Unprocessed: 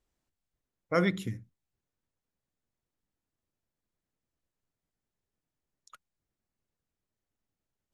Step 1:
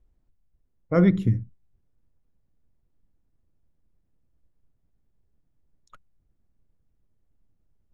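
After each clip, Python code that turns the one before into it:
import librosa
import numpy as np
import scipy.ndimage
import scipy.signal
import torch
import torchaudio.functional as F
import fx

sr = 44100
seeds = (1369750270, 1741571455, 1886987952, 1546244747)

y = fx.rider(x, sr, range_db=10, speed_s=0.5)
y = fx.tilt_eq(y, sr, slope=-4.0)
y = y * 10.0 ** (3.0 / 20.0)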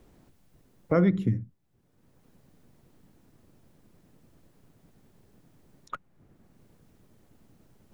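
y = fx.band_squash(x, sr, depth_pct=70)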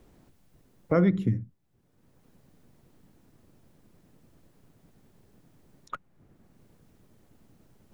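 y = x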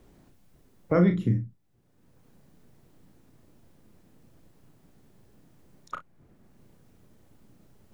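y = fx.room_early_taps(x, sr, ms=(34, 58), db=(-6.5, -16.0))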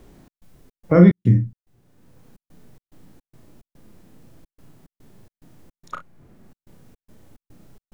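y = fx.hpss(x, sr, part='harmonic', gain_db=7)
y = fx.step_gate(y, sr, bpm=108, pattern='xx.xx.xx.xx.xxx', floor_db=-60.0, edge_ms=4.5)
y = y * 10.0 ** (3.5 / 20.0)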